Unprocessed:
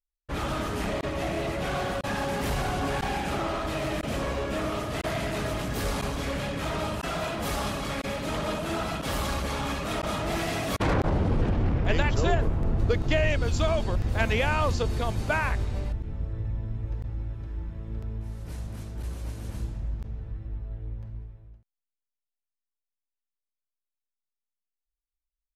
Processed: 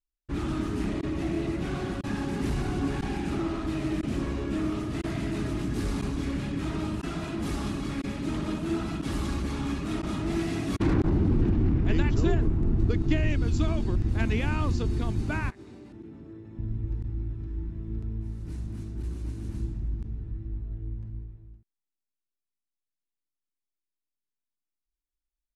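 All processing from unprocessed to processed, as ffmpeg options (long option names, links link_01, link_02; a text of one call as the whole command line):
ffmpeg -i in.wav -filter_complex "[0:a]asettb=1/sr,asplit=3[link_01][link_02][link_03];[link_01]atrim=end=15.504[link_04];[link_02]atrim=start=15.5:end=16.59,asetpts=PTS-STARTPTS,afade=type=in:duration=0.004:curve=qsin,afade=type=out:start_time=1.086:duration=0.004:curve=qsin,highpass=340,acompressor=threshold=-45dB:ratio=6:attack=3.2:release=140:knee=1:detection=peak,lowshelf=frequency=450:gain=6[link_05];[link_03]atrim=start=16.586[link_06];[link_04][link_05]acrossfade=duration=0.004:curve1=hsin:curve2=qsin[link_07];[link_07][link_06]acrossfade=duration=0.004:curve1=qsin:curve2=hsin,lowpass=frequency=11000:width=0.5412,lowpass=frequency=11000:width=1.3066,lowshelf=frequency=420:width_type=q:width=3:gain=7,bandreject=frequency=3200:width=28,volume=-6.5dB" out.wav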